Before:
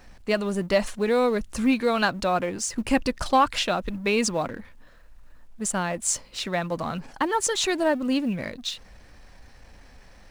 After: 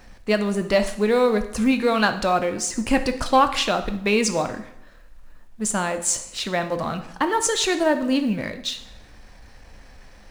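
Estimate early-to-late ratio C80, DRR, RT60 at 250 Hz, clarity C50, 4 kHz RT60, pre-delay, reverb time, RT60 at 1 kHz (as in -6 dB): 15.0 dB, 8.0 dB, 0.80 s, 11.5 dB, 0.75 s, 6 ms, 0.75 s, 0.75 s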